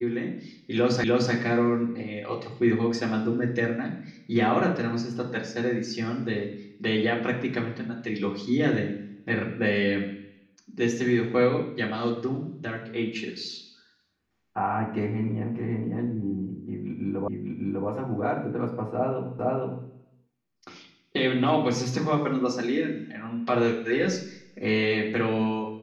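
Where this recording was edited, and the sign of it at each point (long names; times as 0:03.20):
0:01.04: the same again, the last 0.3 s
0:17.28: the same again, the last 0.6 s
0:19.39: the same again, the last 0.46 s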